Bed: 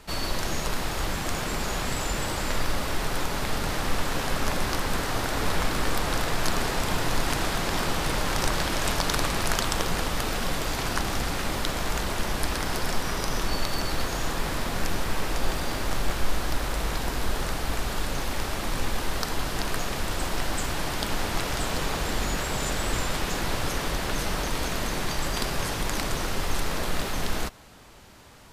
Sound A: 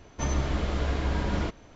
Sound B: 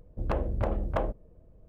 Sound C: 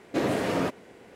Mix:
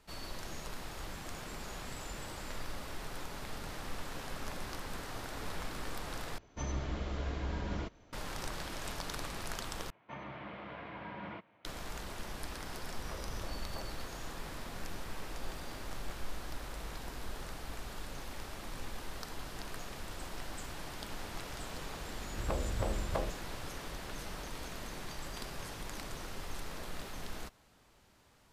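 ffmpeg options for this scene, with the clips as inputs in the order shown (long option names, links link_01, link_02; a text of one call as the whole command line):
ffmpeg -i bed.wav -i cue0.wav -i cue1.wav -filter_complex "[1:a]asplit=2[link_01][link_02];[2:a]asplit=2[link_03][link_04];[0:a]volume=-15dB[link_05];[link_02]highpass=frequency=130:width=0.5412,highpass=frequency=130:width=1.3066,equalizer=frequency=150:width_type=q:width=4:gain=-5,equalizer=frequency=260:width_type=q:width=4:gain=-8,equalizer=frequency=410:width_type=q:width=4:gain=-8,equalizer=frequency=980:width_type=q:width=4:gain=4,equalizer=frequency=2200:width_type=q:width=4:gain=4,lowpass=frequency=3000:width=0.5412,lowpass=frequency=3000:width=1.3066[link_06];[link_03]alimiter=level_in=1.5dB:limit=-24dB:level=0:latency=1:release=71,volume=-1.5dB[link_07];[link_05]asplit=3[link_08][link_09][link_10];[link_08]atrim=end=6.384[link_11];[link_01]atrim=end=1.75,asetpts=PTS-STARTPTS,volume=-9.5dB[link_12];[link_09]atrim=start=8.126:end=9.904[link_13];[link_06]atrim=end=1.75,asetpts=PTS-STARTPTS,volume=-11.5dB[link_14];[link_10]atrim=start=11.646[link_15];[link_07]atrim=end=1.68,asetpts=PTS-STARTPTS,volume=-12.5dB,afade=type=in:duration=0.004:curve=hsin,afade=type=out:start_time=1.676:duration=0.004:curve=hsin,adelay=12800[link_16];[link_04]atrim=end=1.68,asetpts=PTS-STARTPTS,volume=-6dB,afade=type=in:duration=0.004:curve=hsin,afade=type=out:start_time=1.676:duration=0.004:curve=hsin,adelay=22190[link_17];[link_11][link_12]acrossfade=duration=0.004:curve1=hsin:curve2=hsin[link_18];[link_18][link_13]acrossfade=duration=0.004:curve1=hsin:curve2=hsin[link_19];[link_19][link_14]acrossfade=duration=0.004:curve1=hsin:curve2=hsin[link_20];[link_20][link_15]acrossfade=duration=0.004:curve1=hsin:curve2=hsin[link_21];[link_21][link_16][link_17]amix=inputs=3:normalize=0" out.wav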